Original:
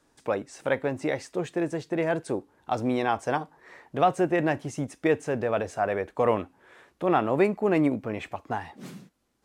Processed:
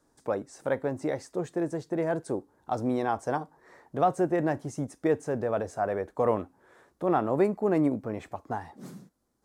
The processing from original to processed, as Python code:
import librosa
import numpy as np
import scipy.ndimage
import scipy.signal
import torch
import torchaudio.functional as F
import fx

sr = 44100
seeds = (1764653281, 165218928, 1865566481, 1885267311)

y = fx.peak_eq(x, sr, hz=2700.0, db=-12.0, octaves=1.1)
y = y * librosa.db_to_amplitude(-1.5)